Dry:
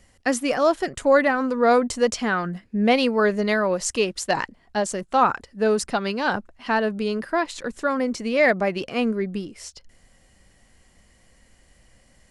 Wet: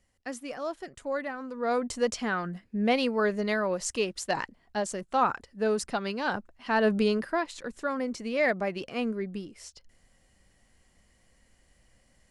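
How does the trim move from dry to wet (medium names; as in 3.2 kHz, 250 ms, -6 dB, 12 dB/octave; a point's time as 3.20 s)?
1.46 s -15 dB
1.94 s -6.5 dB
6.69 s -6.5 dB
6.93 s +3 dB
7.46 s -7.5 dB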